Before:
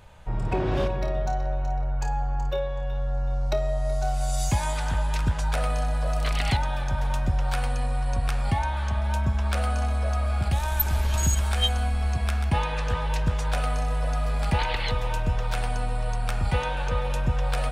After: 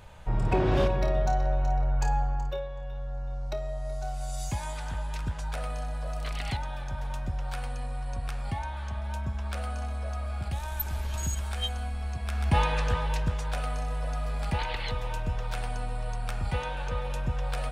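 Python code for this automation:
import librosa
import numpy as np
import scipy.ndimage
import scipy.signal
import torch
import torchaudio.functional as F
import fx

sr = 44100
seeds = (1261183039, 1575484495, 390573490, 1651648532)

y = fx.gain(x, sr, db=fx.line((2.16, 1.0), (2.68, -8.0), (12.24, -8.0), (12.6, 2.0), (13.47, -5.5)))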